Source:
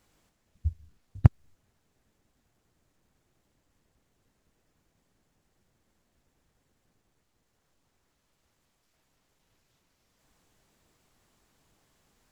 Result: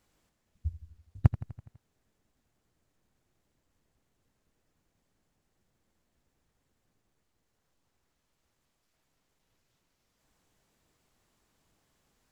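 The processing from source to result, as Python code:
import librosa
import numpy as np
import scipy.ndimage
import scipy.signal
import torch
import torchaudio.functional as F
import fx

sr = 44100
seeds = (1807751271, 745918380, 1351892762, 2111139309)

y = fx.echo_feedback(x, sr, ms=83, feedback_pct=60, wet_db=-15.0)
y = y * librosa.db_to_amplitude(-4.5)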